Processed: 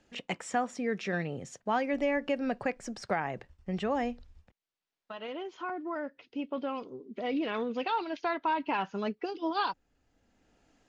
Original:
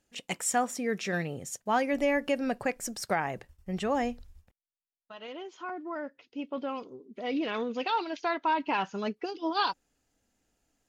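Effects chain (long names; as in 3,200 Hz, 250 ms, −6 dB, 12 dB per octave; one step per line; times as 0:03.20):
high-frequency loss of the air 120 metres
multiband upward and downward compressor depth 40%
level −1 dB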